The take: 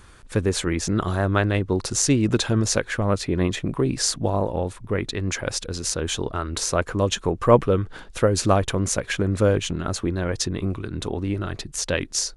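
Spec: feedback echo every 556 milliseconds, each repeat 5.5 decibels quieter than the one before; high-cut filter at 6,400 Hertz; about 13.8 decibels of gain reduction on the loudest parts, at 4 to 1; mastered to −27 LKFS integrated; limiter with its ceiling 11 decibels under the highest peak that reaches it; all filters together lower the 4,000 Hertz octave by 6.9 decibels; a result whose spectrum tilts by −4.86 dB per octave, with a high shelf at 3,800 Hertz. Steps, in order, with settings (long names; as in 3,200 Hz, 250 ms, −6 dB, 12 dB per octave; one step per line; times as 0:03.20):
low-pass filter 6,400 Hz
high-shelf EQ 3,800 Hz −3 dB
parametric band 4,000 Hz −6 dB
downward compressor 4 to 1, threshold −26 dBFS
brickwall limiter −24 dBFS
repeating echo 556 ms, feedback 53%, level −5.5 dB
level +6 dB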